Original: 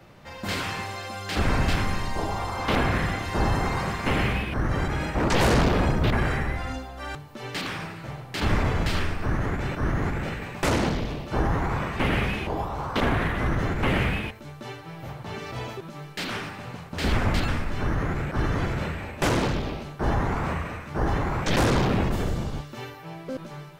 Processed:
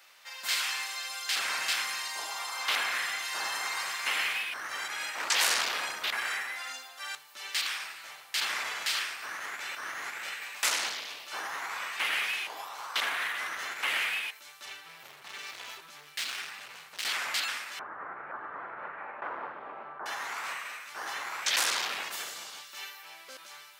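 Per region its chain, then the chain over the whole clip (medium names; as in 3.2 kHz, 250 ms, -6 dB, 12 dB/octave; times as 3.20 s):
14.65–17.05 s: tone controls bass +14 dB, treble -3 dB + doubling 20 ms -13.5 dB + hard clipper -27 dBFS
17.79–20.06 s: low-pass 1.3 kHz 24 dB/octave + level flattener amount 70%
whole clip: high-pass 1.3 kHz 12 dB/octave; treble shelf 3 kHz +11 dB; trim -3 dB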